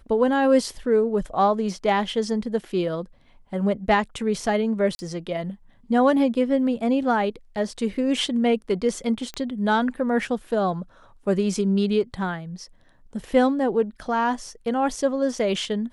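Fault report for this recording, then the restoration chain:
0:04.95–0:04.99: drop-out 40 ms
0:09.34: click −18 dBFS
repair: click removal
repair the gap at 0:04.95, 40 ms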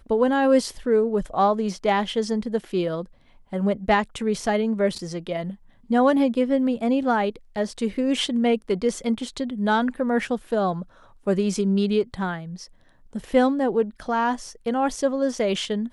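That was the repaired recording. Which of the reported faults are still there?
none of them is left

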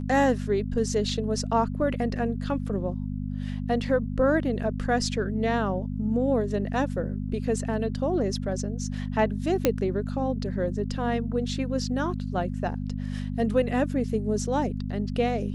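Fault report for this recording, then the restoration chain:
mains hum 50 Hz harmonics 5 −31 dBFS
0:09.65: click −7 dBFS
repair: click removal
hum removal 50 Hz, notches 5

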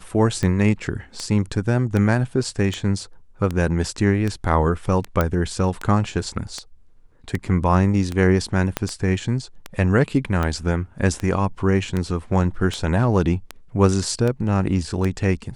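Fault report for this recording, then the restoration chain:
scratch tick 78 rpm −12 dBFS
0:05.21: click −7 dBFS
0:08.77: click −6 dBFS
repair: click removal

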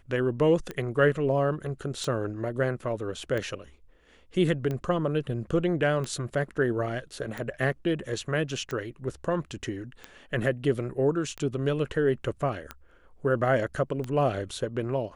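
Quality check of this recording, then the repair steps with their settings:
scratch tick 45 rpm −20 dBFS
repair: click removal

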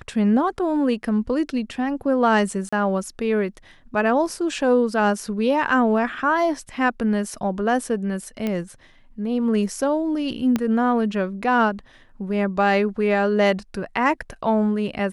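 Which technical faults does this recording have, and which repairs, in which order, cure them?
0:02.69–0:02.73: drop-out 35 ms
0:08.47: click −13 dBFS
0:10.56: click −9 dBFS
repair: click removal
repair the gap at 0:02.69, 35 ms

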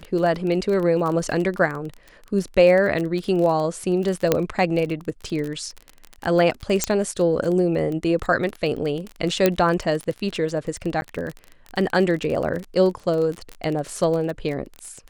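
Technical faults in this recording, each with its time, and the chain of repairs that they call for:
surface crackle 25 per second −26 dBFS
0:04.32: click −3 dBFS
0:06.84: click −4 dBFS
0:09.46: click −3 dBFS
0:11.01–0:11.02: drop-out 10 ms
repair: click removal
repair the gap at 0:11.01, 10 ms

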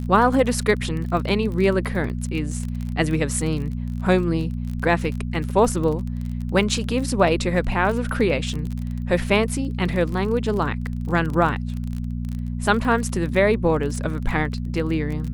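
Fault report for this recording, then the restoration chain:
surface crackle 28 per second −27 dBFS
mains hum 60 Hz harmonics 4 −27 dBFS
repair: click removal
hum removal 60 Hz, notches 4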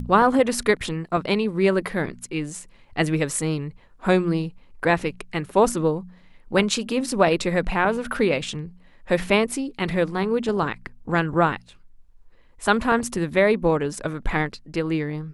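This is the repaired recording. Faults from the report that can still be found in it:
none of them is left

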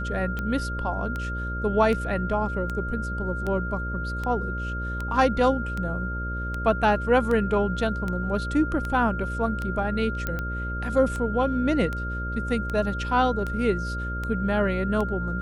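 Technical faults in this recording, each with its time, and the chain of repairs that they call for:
mains buzz 60 Hz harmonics 10 −31 dBFS
scratch tick 78 rpm −18 dBFS
whistle 1,400 Hz −32 dBFS
0:10.27: click −14 dBFS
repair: click removal
notch filter 1,400 Hz, Q 30
hum removal 60 Hz, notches 10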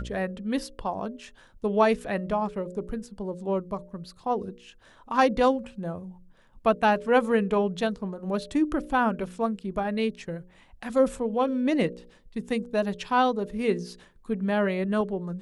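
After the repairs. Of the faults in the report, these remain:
none of them is left

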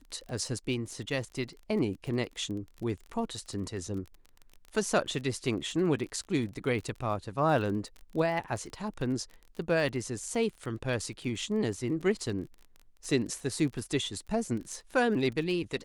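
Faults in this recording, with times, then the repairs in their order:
surface crackle 28 per second −38 dBFS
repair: click removal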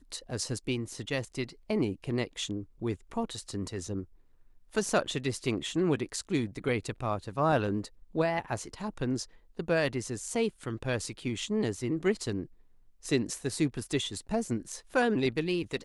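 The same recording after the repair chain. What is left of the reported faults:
none of them is left

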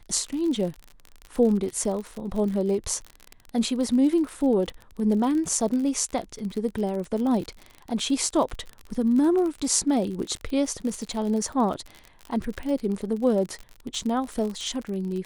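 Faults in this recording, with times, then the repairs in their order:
surface crackle 51 per second −30 dBFS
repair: click removal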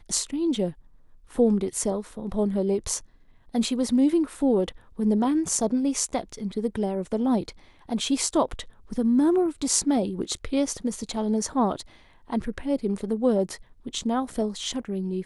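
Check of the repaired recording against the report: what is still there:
none of them is left

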